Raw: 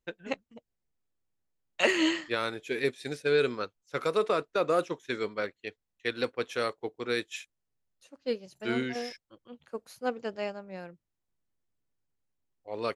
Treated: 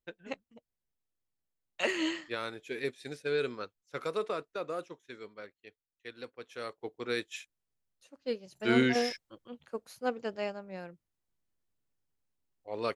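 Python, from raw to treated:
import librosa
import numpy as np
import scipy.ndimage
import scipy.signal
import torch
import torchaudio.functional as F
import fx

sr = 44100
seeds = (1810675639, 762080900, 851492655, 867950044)

y = fx.gain(x, sr, db=fx.line((4.15, -6.0), (5.13, -14.0), (6.44, -14.0), (6.93, -3.0), (8.44, -3.0), (8.86, 7.5), (9.82, -1.0)))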